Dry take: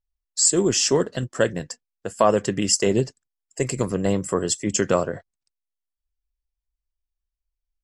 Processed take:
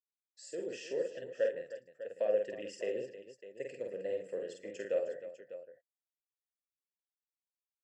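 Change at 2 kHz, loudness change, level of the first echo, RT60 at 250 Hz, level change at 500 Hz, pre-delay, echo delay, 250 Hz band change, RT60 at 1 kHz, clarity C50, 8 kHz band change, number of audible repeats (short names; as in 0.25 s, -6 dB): -16.5 dB, -16.0 dB, -3.5 dB, none, -11.5 dB, none, 48 ms, -25.0 dB, none, none, -34.0 dB, 5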